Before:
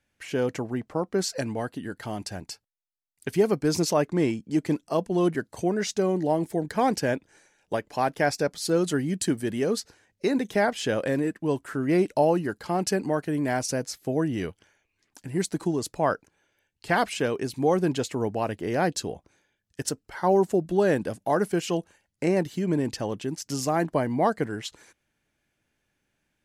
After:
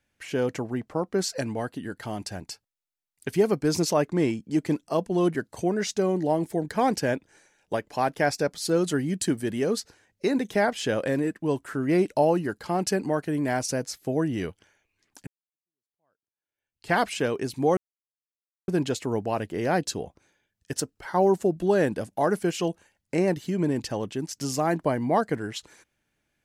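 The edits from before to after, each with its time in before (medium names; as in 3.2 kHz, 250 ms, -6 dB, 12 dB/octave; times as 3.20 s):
15.27–16.91 s: fade in exponential
17.77 s: insert silence 0.91 s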